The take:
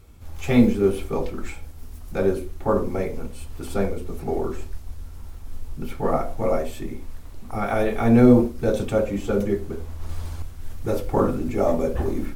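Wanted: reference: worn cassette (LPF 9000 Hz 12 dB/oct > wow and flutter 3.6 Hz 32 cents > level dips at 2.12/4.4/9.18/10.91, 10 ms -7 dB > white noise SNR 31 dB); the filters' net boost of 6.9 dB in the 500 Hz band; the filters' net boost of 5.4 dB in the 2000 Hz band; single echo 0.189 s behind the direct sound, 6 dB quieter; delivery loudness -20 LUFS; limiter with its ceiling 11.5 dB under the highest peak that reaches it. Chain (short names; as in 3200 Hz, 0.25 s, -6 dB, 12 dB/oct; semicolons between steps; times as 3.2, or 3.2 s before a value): bell 500 Hz +8 dB; bell 2000 Hz +6.5 dB; limiter -11 dBFS; LPF 9000 Hz 12 dB/oct; echo 0.189 s -6 dB; wow and flutter 3.6 Hz 32 cents; level dips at 2.12/4.4/9.18/10.91, 10 ms -7 dB; white noise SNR 31 dB; gain +2 dB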